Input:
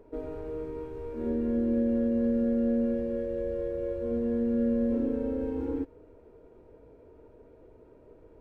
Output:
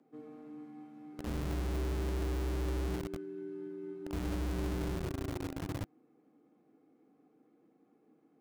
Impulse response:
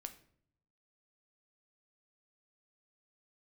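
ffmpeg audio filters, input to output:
-filter_complex "[0:a]asettb=1/sr,asplit=3[link_01][link_02][link_03];[link_01]atrim=end=4.524[link_04];[link_02]atrim=start=4.52:end=5.12,asetpts=PTS-STARTPTS,afade=type=in:duration=0.004:curve=qsin,afade=type=out:start_time=0.596:duration=0.004:curve=qsin,aecho=1:1:5.9:0.5,atrim=end_sample=26460[link_05];[link_03]atrim=start=5.116[link_06];[link_04][link_05]acrossfade=duration=0.004:curve1=hsin:curve2=qsin[link_07];[link_07][link_06]acrossfade=duration=0.004:curve1=qsin:curve2=hsin,afreqshift=-170,acrossover=split=220|450|1200[link_08][link_09][link_10][link_11];[link_08]acrusher=bits=4:mix=0:aa=0.000001[link_12];[link_12][link_09][link_10][link_11]amix=inputs=4:normalize=0,volume=-8.5dB"

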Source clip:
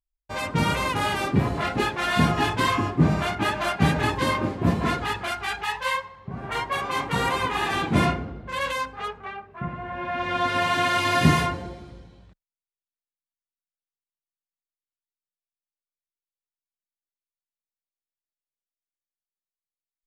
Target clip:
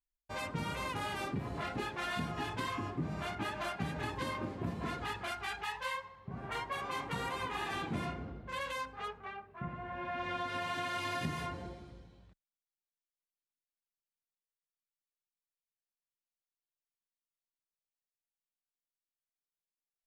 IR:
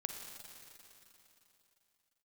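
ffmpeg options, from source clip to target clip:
-af "acompressor=threshold=-25dB:ratio=6,volume=-9dB"

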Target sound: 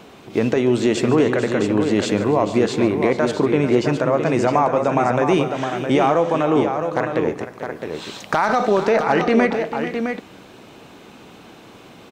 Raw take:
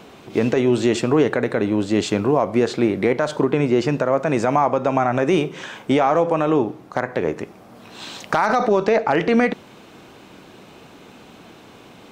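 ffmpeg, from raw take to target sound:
ffmpeg -i in.wav -af "aecho=1:1:145|441|662:0.158|0.251|0.447" out.wav

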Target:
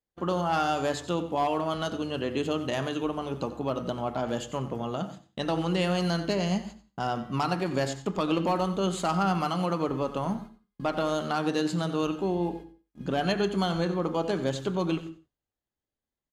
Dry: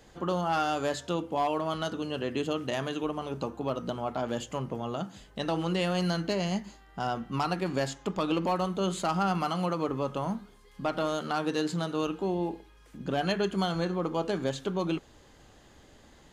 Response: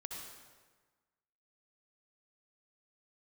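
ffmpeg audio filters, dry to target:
-filter_complex "[0:a]agate=range=-39dB:threshold=-43dB:ratio=16:detection=peak,aecho=1:1:91:0.188,asplit=2[link_01][link_02];[1:a]atrim=start_sample=2205,afade=type=out:start_time=0.24:duration=0.01,atrim=end_sample=11025,lowshelf=frequency=420:gain=7.5[link_03];[link_02][link_03]afir=irnorm=-1:irlink=0,volume=-11.5dB[link_04];[link_01][link_04]amix=inputs=2:normalize=0"

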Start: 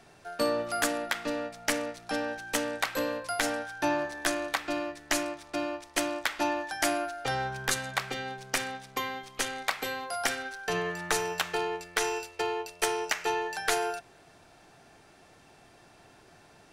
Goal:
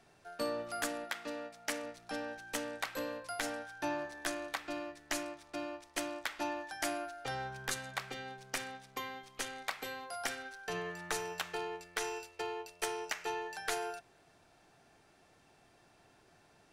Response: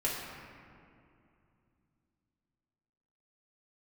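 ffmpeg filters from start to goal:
-filter_complex "[0:a]asettb=1/sr,asplit=3[link_01][link_02][link_03];[link_01]atrim=end=1.044[link_04];[link_02]atrim=start=1.04:end=1.84,asetpts=PTS-STARTPTS,afade=type=in:duration=0.004:curve=qsin,afade=type=out:start_time=0.796:duration=0.004:curve=qsin,lowshelf=frequency=120:gain=-12[link_05];[link_03]atrim=start=1.836[link_06];[link_04][link_05]acrossfade=duration=0.004:curve1=hsin:curve2=qsin[link_07];[link_07][link_06]acrossfade=duration=0.004:curve1=qsin:curve2=hsin,volume=-8.5dB"

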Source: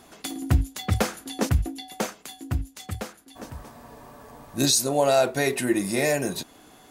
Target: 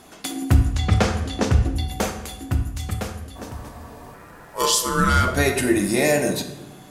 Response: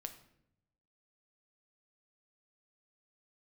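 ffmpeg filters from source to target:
-filter_complex "[0:a]asettb=1/sr,asplit=3[link_01][link_02][link_03];[link_01]atrim=end=0.654[link_04];[link_02]atrim=start=0.65:end=1.74,asetpts=PTS-STARTPTS,afade=type=in:duration=0.004:curve=qsin,afade=type=out:start_time=1.086:duration=0.004:curve=qsin,lowpass=6600[link_05];[link_03]atrim=start=1.736[link_06];[link_04][link_05]acrossfade=duration=0.004:curve1=hsin:curve2=qsin[link_07];[link_07][link_06]acrossfade=duration=0.004:curve1=qsin:curve2=hsin,asettb=1/sr,asplit=3[link_08][link_09][link_10];[link_08]atrim=end=4.144[link_11];[link_09]atrim=start=4.14:end=5.28,asetpts=PTS-STARTPTS,afade=type=in:duration=0.004:curve=qsin,afade=type=out:start_time=1.136:duration=0.004:curve=qsin,aeval=exprs='val(0)*sin(2*PI*750*n/s)':channel_layout=same[link_12];[link_10]atrim=start=5.276[link_13];[link_11][link_12]acrossfade=duration=0.004:curve1=hsin:curve2=qsin[link_14];[link_14][link_13]acrossfade=duration=0.004:curve1=qsin:curve2=hsin[link_15];[1:a]atrim=start_sample=2205,asetrate=27342,aresample=44100[link_16];[link_15][link_16]afir=irnorm=-1:irlink=0,volume=5.5dB"

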